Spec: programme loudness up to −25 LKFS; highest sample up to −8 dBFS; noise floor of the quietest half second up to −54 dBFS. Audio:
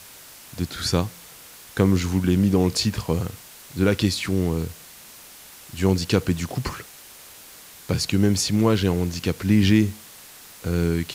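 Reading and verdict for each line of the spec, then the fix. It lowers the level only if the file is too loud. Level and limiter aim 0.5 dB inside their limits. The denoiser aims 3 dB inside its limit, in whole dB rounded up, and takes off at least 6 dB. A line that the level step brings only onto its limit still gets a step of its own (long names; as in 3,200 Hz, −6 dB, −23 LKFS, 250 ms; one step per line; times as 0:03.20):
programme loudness −22.5 LKFS: out of spec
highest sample −5.5 dBFS: out of spec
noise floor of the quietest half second −45 dBFS: out of spec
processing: broadband denoise 9 dB, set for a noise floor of −45 dBFS
level −3 dB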